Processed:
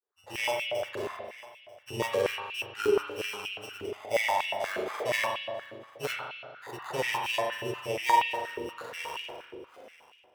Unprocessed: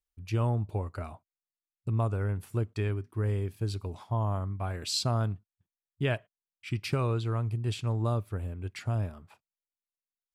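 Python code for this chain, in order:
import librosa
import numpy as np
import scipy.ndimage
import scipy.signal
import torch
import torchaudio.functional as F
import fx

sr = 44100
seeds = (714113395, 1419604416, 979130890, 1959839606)

y = fx.tape_stop_end(x, sr, length_s=1.88)
y = scipy.signal.sosfilt(scipy.signal.butter(6, 4200.0, 'lowpass', fs=sr, output='sos'), y)
y = fx.env_lowpass_down(y, sr, base_hz=2100.0, full_db=-28.5)
y = fx.hpss(y, sr, part='percussive', gain_db=-13)
y = fx.formant_shift(y, sr, semitones=-4)
y = fx.sample_hold(y, sr, seeds[0], rate_hz=2800.0, jitter_pct=0)
y = fx.granulator(y, sr, seeds[1], grain_ms=100.0, per_s=20.0, spray_ms=16.0, spread_st=0)
y = y + 10.0 ** (-20.0 / 20.0) * np.pad(y, (int(940 * sr / 1000.0), 0))[:len(y)]
y = fx.rev_spring(y, sr, rt60_s=1.5, pass_ms=(40,), chirp_ms=65, drr_db=-1.5)
y = fx.filter_held_highpass(y, sr, hz=8.4, low_hz=400.0, high_hz=2600.0)
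y = y * 10.0 ** (7.0 / 20.0)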